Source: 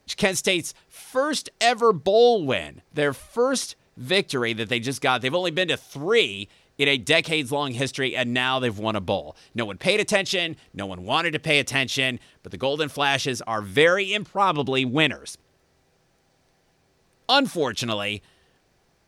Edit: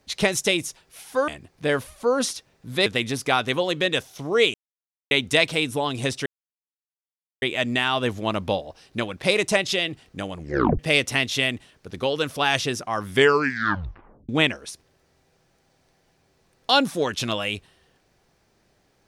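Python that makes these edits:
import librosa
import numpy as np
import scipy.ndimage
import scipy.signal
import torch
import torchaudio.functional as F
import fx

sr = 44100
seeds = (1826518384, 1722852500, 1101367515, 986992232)

y = fx.edit(x, sr, fx.cut(start_s=1.28, length_s=1.33),
    fx.cut(start_s=4.19, length_s=0.43),
    fx.silence(start_s=6.3, length_s=0.57),
    fx.insert_silence(at_s=8.02, length_s=1.16),
    fx.tape_stop(start_s=10.97, length_s=0.42),
    fx.tape_stop(start_s=13.71, length_s=1.18), tone=tone)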